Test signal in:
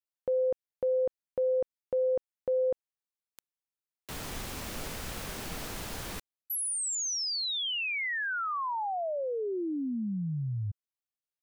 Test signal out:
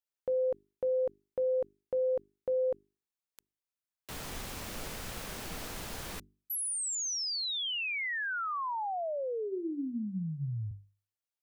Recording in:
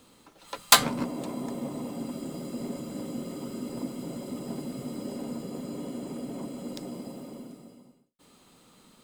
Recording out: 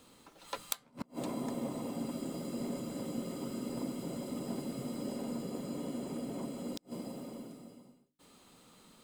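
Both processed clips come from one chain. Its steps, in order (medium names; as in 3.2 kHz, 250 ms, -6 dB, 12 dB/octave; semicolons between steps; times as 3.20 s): hum notches 50/100/150/200/250/300/350/400 Hz; inverted gate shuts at -21 dBFS, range -33 dB; trim -2 dB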